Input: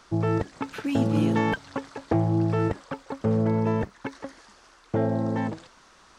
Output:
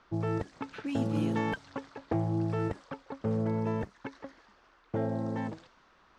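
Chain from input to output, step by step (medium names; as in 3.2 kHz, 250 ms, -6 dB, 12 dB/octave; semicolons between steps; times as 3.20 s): level-controlled noise filter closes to 2.9 kHz, open at -20.5 dBFS; trim -7 dB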